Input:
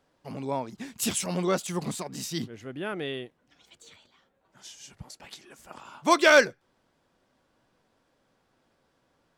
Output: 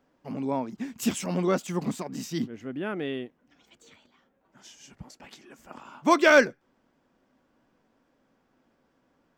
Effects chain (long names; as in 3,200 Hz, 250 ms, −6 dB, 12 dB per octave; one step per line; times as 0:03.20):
graphic EQ with 15 bands 100 Hz −4 dB, 250 Hz +7 dB, 4,000 Hz −6 dB, 10,000 Hz −11 dB